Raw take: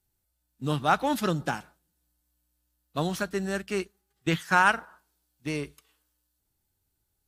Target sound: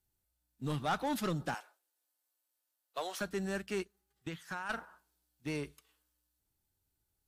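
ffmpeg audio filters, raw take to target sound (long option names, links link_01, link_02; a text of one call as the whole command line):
ffmpeg -i in.wav -filter_complex "[0:a]asettb=1/sr,asplit=3[link_01][link_02][link_03];[link_01]atrim=end=1.544[link_04];[link_02]atrim=start=1.54:end=3.21,asetpts=PTS-STARTPTS,afade=type=in:duration=0.004:curve=qsin,afade=type=out:start_time=1.666:duration=0.004:curve=qsin,highpass=frequency=460:width=0.5412,highpass=frequency=460:width=1.3066[link_05];[link_03]atrim=start=3.206[link_06];[link_04][link_05]acrossfade=duration=0.004:curve1=hsin:curve2=qsin[link_07];[link_07][link_06]acrossfade=duration=0.004:curve1=qsin:curve2=hsin,asplit=3[link_08][link_09][link_10];[link_08]afade=type=out:start_time=3.82:duration=0.02[link_11];[link_09]acompressor=threshold=-34dB:ratio=5,afade=type=in:start_time=3.82:duration=0.02,afade=type=out:start_time=4.69:duration=0.02[link_12];[link_10]afade=type=in:start_time=4.69:duration=0.02[link_13];[link_11][link_12][link_13]amix=inputs=3:normalize=0,asoftclip=type=tanh:threshold=-22dB,volume=-5dB" out.wav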